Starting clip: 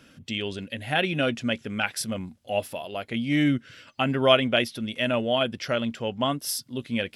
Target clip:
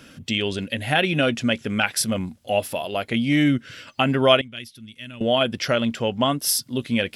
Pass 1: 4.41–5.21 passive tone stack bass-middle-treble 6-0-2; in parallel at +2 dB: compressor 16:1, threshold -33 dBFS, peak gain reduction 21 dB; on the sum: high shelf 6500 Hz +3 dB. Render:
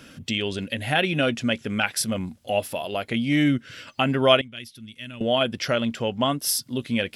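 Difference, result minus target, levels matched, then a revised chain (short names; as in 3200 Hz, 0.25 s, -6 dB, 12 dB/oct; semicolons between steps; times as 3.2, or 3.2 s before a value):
compressor: peak gain reduction +6.5 dB
4.41–5.21 passive tone stack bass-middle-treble 6-0-2; in parallel at +2 dB: compressor 16:1, threshold -26 dBFS, peak gain reduction 14.5 dB; on the sum: high shelf 6500 Hz +3 dB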